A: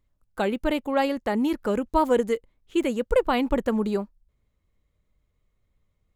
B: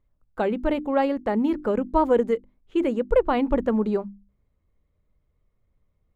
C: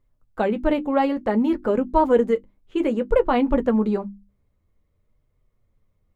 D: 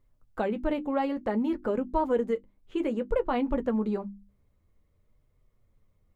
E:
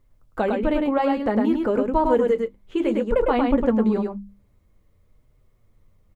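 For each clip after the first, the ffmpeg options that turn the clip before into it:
-af "lowpass=f=1.2k:p=1,bandreject=f=50:t=h:w=6,bandreject=f=100:t=h:w=6,bandreject=f=150:t=h:w=6,bandreject=f=200:t=h:w=6,bandreject=f=250:t=h:w=6,bandreject=f=300:t=h:w=6,bandreject=f=350:t=h:w=6,volume=2.5dB"
-af "flanger=delay=7.7:depth=2.7:regen=-42:speed=0.56:shape=triangular,volume=6dB"
-af "acompressor=threshold=-38dB:ratio=1.5"
-af "aecho=1:1:105:0.668,volume=6dB"

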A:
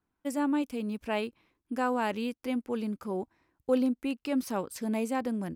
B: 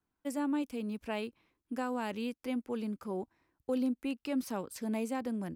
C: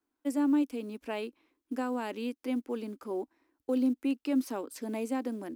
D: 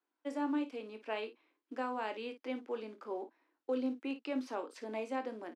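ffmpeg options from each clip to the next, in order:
-filter_complex "[0:a]acrossover=split=320|3000[a][b][c];[b]acompressor=threshold=-30dB:ratio=6[d];[a][d][c]amix=inputs=3:normalize=0,volume=-3.5dB"
-af "acrusher=bits=9:mode=log:mix=0:aa=0.000001,lowshelf=f=210:t=q:w=3:g=-9.5"
-filter_complex "[0:a]highpass=440,lowpass=4k,asplit=2[a][b];[b]aecho=0:1:23|55:0.335|0.237[c];[a][c]amix=inputs=2:normalize=0,volume=-1dB"

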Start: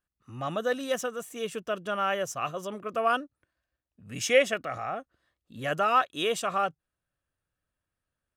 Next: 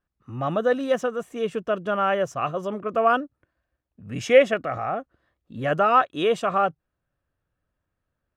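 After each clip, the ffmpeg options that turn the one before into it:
-af "lowpass=f=1.2k:p=1,volume=8dB"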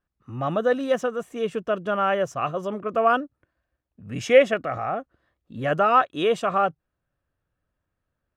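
-af anull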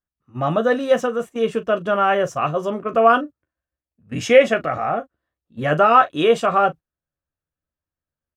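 -filter_complex "[0:a]asplit=2[a][b];[b]aecho=0:1:13|40:0.398|0.168[c];[a][c]amix=inputs=2:normalize=0,agate=range=-16dB:threshold=-34dB:ratio=16:detection=peak,alimiter=level_in=5.5dB:limit=-1dB:release=50:level=0:latency=1,volume=-1dB"

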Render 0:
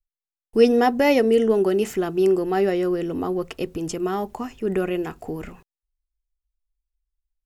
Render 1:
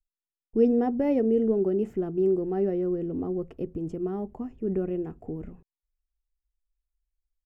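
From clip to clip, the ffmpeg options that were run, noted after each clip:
-af "firequalizer=gain_entry='entry(210,0);entry(1000,-15);entry(4100,-27)':delay=0.05:min_phase=1,volume=-2dB"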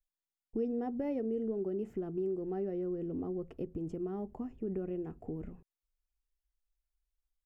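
-af "acompressor=threshold=-32dB:ratio=2.5,volume=-3.5dB"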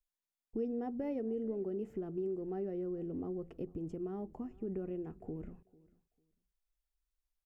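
-af "aecho=1:1:447|894:0.0708|0.0135,volume=-2.5dB"

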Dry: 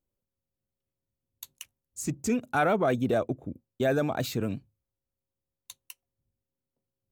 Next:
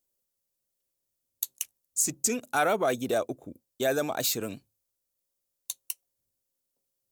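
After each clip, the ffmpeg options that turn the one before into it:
-af "bass=f=250:g=-11,treble=f=4k:g=13"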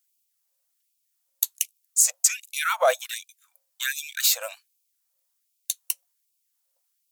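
-af "afftfilt=real='re*gte(b*sr/1024,480*pow(2300/480,0.5+0.5*sin(2*PI*1.3*pts/sr)))':imag='im*gte(b*sr/1024,480*pow(2300/480,0.5+0.5*sin(2*PI*1.3*pts/sr)))':win_size=1024:overlap=0.75,volume=7.5dB"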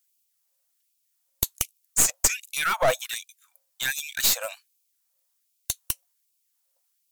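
-af "aeval=exprs='clip(val(0),-1,0.0668)':c=same,volume=1.5dB"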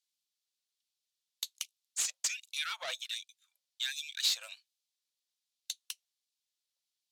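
-af "bandpass=f=3.8k:t=q:w=1.9:csg=0,volume=-2.5dB"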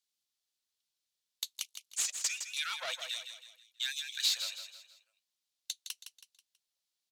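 -af "aecho=1:1:162|324|486|648:0.376|0.15|0.0601|0.0241"

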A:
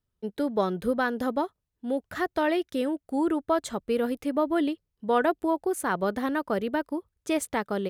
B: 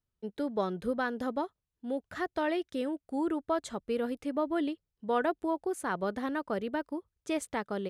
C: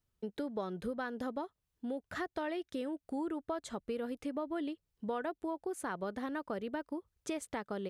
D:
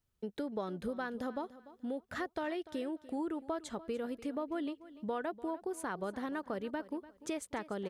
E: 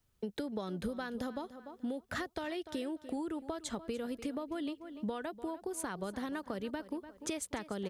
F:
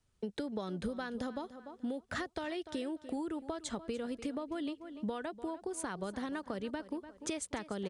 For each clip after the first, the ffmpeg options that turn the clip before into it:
-af "lowpass=9.7k,volume=-5.5dB"
-af "acompressor=threshold=-42dB:ratio=3,volume=4dB"
-af "aecho=1:1:294|588|882:0.141|0.0381|0.0103"
-filter_complex "[0:a]acrossover=split=160|3000[a][b][c];[b]acompressor=threshold=-43dB:ratio=6[d];[a][d][c]amix=inputs=3:normalize=0,volume=6.5dB"
-af "aresample=22050,aresample=44100"

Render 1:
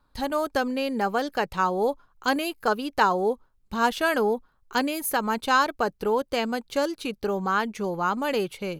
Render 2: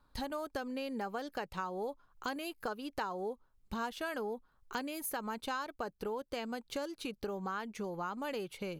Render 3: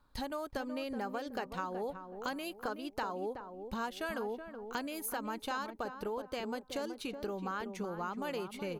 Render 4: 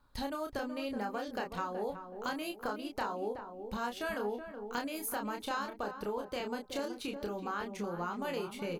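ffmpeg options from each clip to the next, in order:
-af "acompressor=threshold=-35dB:ratio=4,volume=-2.5dB"
-filter_complex "[0:a]asplit=2[a][b];[b]adelay=374,lowpass=f=1k:p=1,volume=-7dB,asplit=2[c][d];[d]adelay=374,lowpass=f=1k:p=1,volume=0.36,asplit=2[e][f];[f]adelay=374,lowpass=f=1k:p=1,volume=0.36,asplit=2[g][h];[h]adelay=374,lowpass=f=1k:p=1,volume=0.36[i];[a][c][e][g][i]amix=inputs=5:normalize=0"
-filter_complex "[0:a]asplit=2[a][b];[b]adelay=29,volume=-4.5dB[c];[a][c]amix=inputs=2:normalize=0"

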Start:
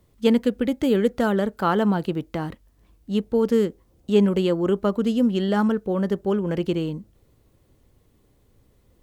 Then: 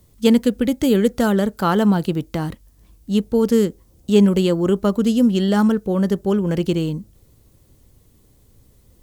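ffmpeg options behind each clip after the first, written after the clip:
-af "bass=f=250:g=5,treble=f=4k:g=10,volume=2dB"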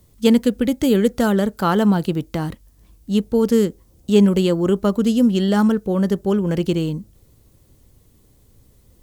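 -af anull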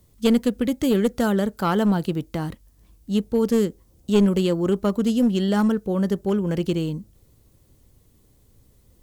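-af "aeval=exprs='clip(val(0),-1,0.237)':c=same,volume=-3.5dB"

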